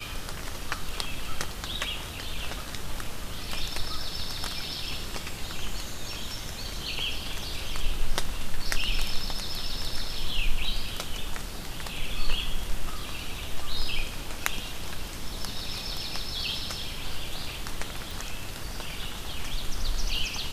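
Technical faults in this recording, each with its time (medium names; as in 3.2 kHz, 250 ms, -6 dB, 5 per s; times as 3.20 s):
18.11 s: pop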